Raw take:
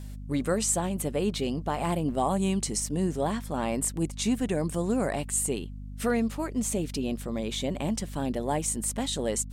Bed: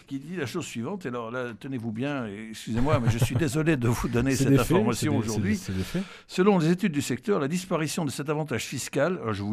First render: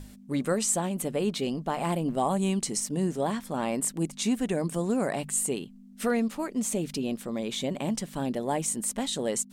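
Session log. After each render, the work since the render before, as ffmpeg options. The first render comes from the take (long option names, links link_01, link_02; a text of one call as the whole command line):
ffmpeg -i in.wav -af "bandreject=frequency=50:width_type=h:width=6,bandreject=frequency=100:width_type=h:width=6,bandreject=frequency=150:width_type=h:width=6" out.wav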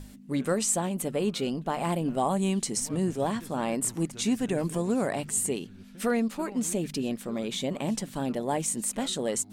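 ffmpeg -i in.wav -i bed.wav -filter_complex "[1:a]volume=-22dB[link_01];[0:a][link_01]amix=inputs=2:normalize=0" out.wav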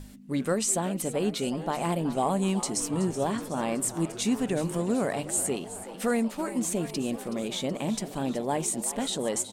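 ffmpeg -i in.wav -filter_complex "[0:a]asplit=8[link_01][link_02][link_03][link_04][link_05][link_06][link_07][link_08];[link_02]adelay=374,afreqshift=99,volume=-14dB[link_09];[link_03]adelay=748,afreqshift=198,volume=-18.3dB[link_10];[link_04]adelay=1122,afreqshift=297,volume=-22.6dB[link_11];[link_05]adelay=1496,afreqshift=396,volume=-26.9dB[link_12];[link_06]adelay=1870,afreqshift=495,volume=-31.2dB[link_13];[link_07]adelay=2244,afreqshift=594,volume=-35.5dB[link_14];[link_08]adelay=2618,afreqshift=693,volume=-39.8dB[link_15];[link_01][link_09][link_10][link_11][link_12][link_13][link_14][link_15]amix=inputs=8:normalize=0" out.wav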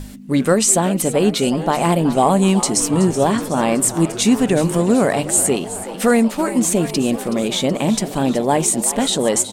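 ffmpeg -i in.wav -af "volume=12dB" out.wav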